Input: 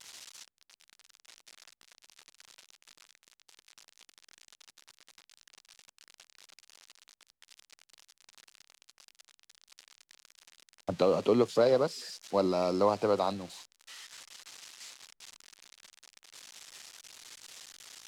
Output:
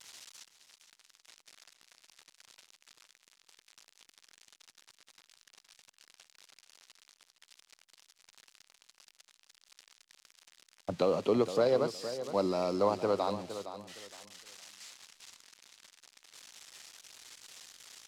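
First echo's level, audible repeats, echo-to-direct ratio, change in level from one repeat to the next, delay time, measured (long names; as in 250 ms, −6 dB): −11.5 dB, 2, −11.0 dB, −12.0 dB, 464 ms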